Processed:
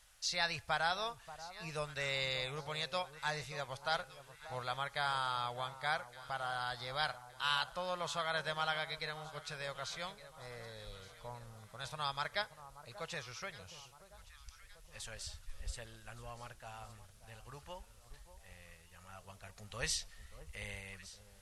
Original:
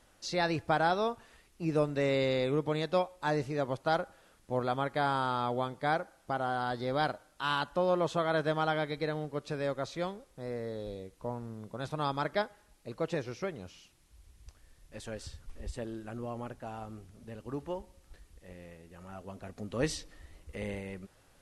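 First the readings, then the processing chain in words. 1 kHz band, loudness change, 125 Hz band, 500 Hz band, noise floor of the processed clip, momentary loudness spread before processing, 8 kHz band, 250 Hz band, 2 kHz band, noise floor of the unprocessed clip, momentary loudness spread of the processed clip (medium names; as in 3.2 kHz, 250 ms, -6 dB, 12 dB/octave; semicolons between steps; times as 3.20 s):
-6.0 dB, -6.0 dB, -10.5 dB, -12.5 dB, -61 dBFS, 18 LU, +3.5 dB, -18.5 dB, -1.5 dB, -64 dBFS, 20 LU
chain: amplifier tone stack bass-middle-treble 10-0-10; on a send: echo whose repeats swap between lows and highs 583 ms, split 1.2 kHz, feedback 66%, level -13.5 dB; on the sum: trim +4 dB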